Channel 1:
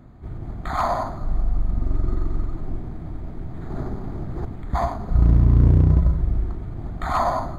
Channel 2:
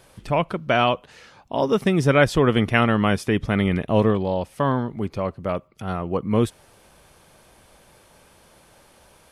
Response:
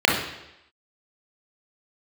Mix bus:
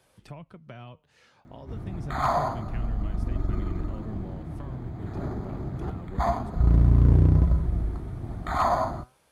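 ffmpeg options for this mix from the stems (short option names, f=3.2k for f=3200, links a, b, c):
-filter_complex "[0:a]adelay=1450,volume=2.5dB[a];[1:a]acrossover=split=160[b][c];[c]acompressor=threshold=-33dB:ratio=8[d];[b][d]amix=inputs=2:normalize=0,volume=-7dB[e];[a][e]amix=inputs=2:normalize=0,highpass=45,flanger=delay=1.1:depth=9.3:regen=85:speed=0.29:shape=triangular"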